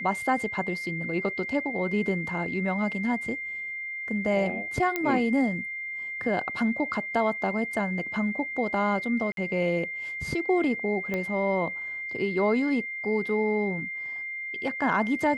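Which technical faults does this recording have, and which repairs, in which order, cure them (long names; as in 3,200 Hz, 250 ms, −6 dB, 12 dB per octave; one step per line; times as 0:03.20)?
whistle 2,100 Hz −32 dBFS
0:04.96: click −13 dBFS
0:09.32–0:09.37: drop-out 52 ms
0:11.14: click −17 dBFS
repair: click removal
notch filter 2,100 Hz, Q 30
repair the gap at 0:09.32, 52 ms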